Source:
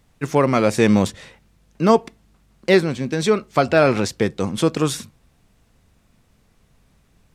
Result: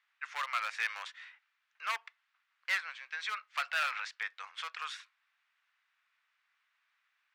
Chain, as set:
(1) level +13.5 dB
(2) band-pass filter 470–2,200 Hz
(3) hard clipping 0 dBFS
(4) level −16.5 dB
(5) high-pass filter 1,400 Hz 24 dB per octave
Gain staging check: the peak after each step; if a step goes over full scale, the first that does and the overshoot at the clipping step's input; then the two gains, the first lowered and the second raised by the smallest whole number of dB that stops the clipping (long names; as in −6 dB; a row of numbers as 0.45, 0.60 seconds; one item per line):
+11.0, +9.5, 0.0, −16.5, −19.0 dBFS
step 1, 9.5 dB
step 1 +3.5 dB, step 4 −6.5 dB